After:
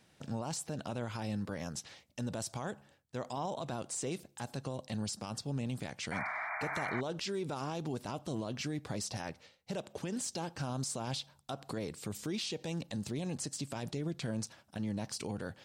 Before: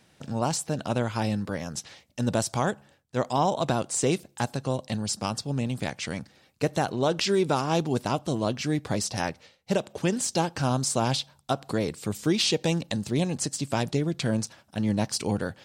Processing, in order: limiter -23.5 dBFS, peak gain reduction 11 dB; painted sound noise, 6.11–7.01, 600–2400 Hz -33 dBFS; gain -5.5 dB

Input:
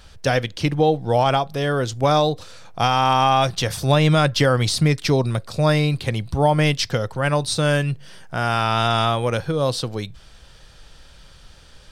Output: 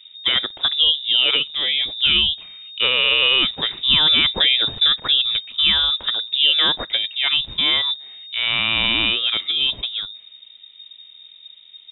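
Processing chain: low-pass opened by the level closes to 890 Hz, open at -12.5 dBFS; inverted band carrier 3700 Hz

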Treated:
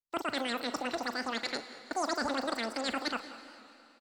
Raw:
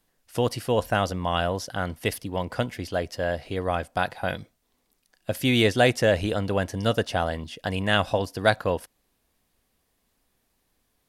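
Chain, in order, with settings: expander -38 dBFS; fifteen-band EQ 250 Hz +4 dB, 630 Hz -6 dB, 1600 Hz +3 dB, 4000 Hz -12 dB, 10000 Hz -3 dB; reverse; compressor, threshold -27 dBFS, peak gain reduction 11.5 dB; reverse; air absorption 180 m; diffused feedback echo 0.527 s, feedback 60%, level -13.5 dB; wide varispeed 2.77×; doubler 41 ms -13.5 dB; record warp 78 rpm, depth 100 cents; gain -2 dB

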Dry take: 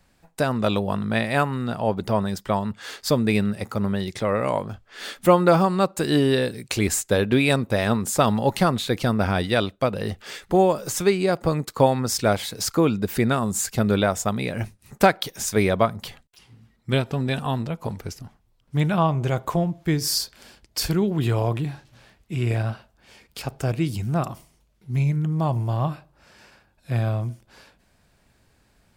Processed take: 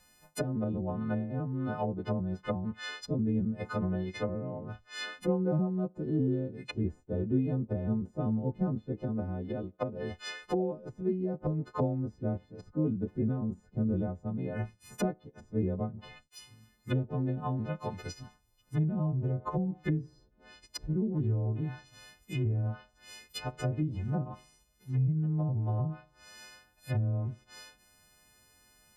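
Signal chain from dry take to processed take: frequency quantiser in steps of 3 st; 8.92–10.85 tone controls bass -5 dB, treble +3 dB; treble ducked by the level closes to 300 Hz, closed at -18.5 dBFS; gain -6 dB

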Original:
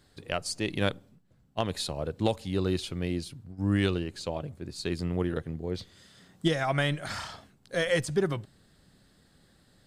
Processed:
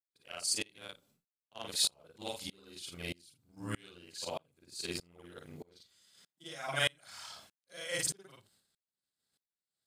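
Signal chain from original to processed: short-time reversal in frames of 0.115 s; expander -52 dBFS; tilt +3.5 dB/oct; notch 1800 Hz, Q 10; dB-ramp tremolo swelling 1.6 Hz, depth 31 dB; gain +3 dB

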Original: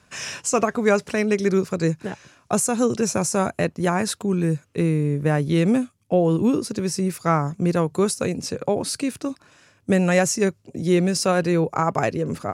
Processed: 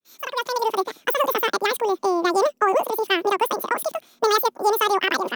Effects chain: opening faded in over 1.90 s; speed mistake 33 rpm record played at 78 rpm

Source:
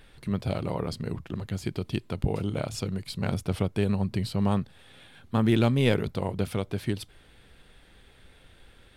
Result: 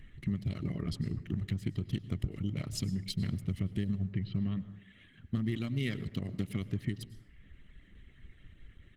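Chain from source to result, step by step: Wiener smoothing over 9 samples; reverb removal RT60 0.75 s; 1.65–2.2 expander -52 dBFS; 4.01–4.61 LPF 2100 Hz -> 4900 Hz 24 dB/oct; 5.55–6.61 low shelf 90 Hz -10.5 dB; comb 1 ms, depth 80%; compressor 8:1, threshold -29 dBFS, peak gain reduction 13.5 dB; Butterworth band-stop 880 Hz, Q 1; plate-style reverb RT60 0.92 s, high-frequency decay 0.5×, pre-delay 85 ms, DRR 14.5 dB; Opus 16 kbps 48000 Hz

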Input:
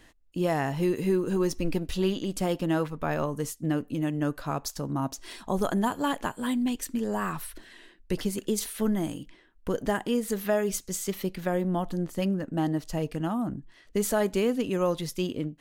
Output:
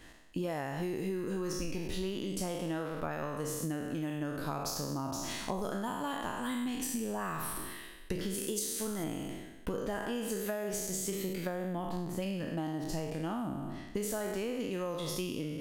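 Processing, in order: spectral trails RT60 1.06 s; 8.34–9.04 tone controls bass -5 dB, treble +6 dB; compressor 10:1, threshold -32 dBFS, peak gain reduction 13.5 dB

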